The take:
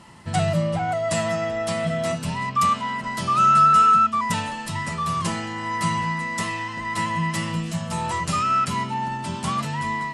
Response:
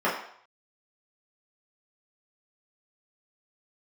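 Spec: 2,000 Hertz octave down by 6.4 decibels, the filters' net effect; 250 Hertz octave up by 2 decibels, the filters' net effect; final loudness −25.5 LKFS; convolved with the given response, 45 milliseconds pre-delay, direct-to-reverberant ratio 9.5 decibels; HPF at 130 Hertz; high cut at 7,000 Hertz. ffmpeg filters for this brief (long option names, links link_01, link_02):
-filter_complex "[0:a]highpass=130,lowpass=7000,equalizer=frequency=250:width_type=o:gain=4.5,equalizer=frequency=2000:width_type=o:gain=-7,asplit=2[link_01][link_02];[1:a]atrim=start_sample=2205,adelay=45[link_03];[link_02][link_03]afir=irnorm=-1:irlink=0,volume=-24.5dB[link_04];[link_01][link_04]amix=inputs=2:normalize=0,volume=-2dB"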